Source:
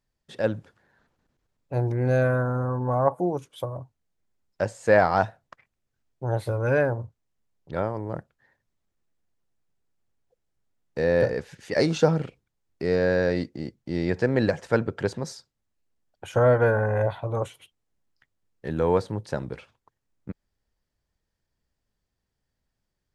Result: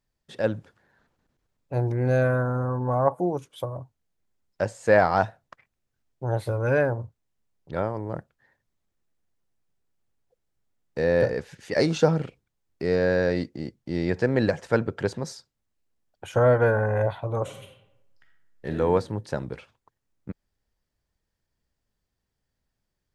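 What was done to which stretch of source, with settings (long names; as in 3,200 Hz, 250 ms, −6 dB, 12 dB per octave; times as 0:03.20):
0:17.42–0:18.75: thrown reverb, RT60 0.86 s, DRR 2 dB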